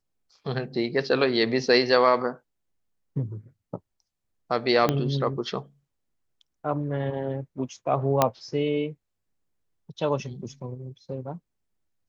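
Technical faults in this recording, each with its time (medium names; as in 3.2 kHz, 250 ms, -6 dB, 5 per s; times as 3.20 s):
4.89 s: pop -9 dBFS
8.22 s: pop -5 dBFS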